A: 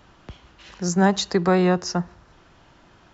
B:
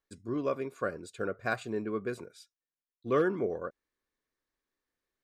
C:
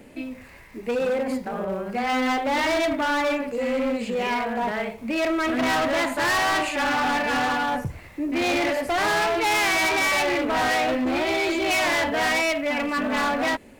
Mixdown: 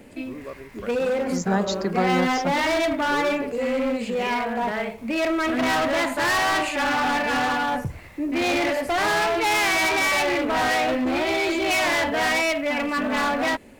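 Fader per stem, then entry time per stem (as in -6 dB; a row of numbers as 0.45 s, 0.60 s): -5.5 dB, -6.0 dB, +0.5 dB; 0.50 s, 0.00 s, 0.00 s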